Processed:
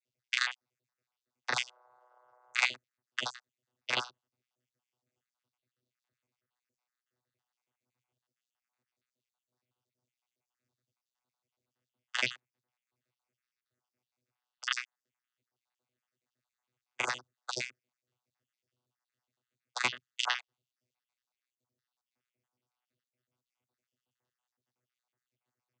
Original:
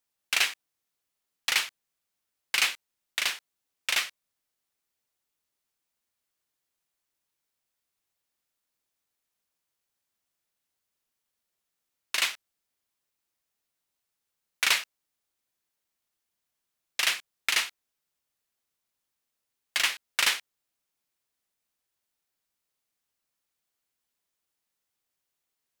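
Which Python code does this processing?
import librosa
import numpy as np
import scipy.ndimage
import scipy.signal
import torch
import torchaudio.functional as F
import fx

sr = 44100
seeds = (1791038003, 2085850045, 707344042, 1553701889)

y = fx.spec_dropout(x, sr, seeds[0], share_pct=65)
y = fx.dmg_noise_band(y, sr, seeds[1], low_hz=570.0, high_hz=1300.0, level_db=-69.0, at=(1.53, 2.66), fade=0.02)
y = fx.vocoder(y, sr, bands=16, carrier='saw', carrier_hz=124.0)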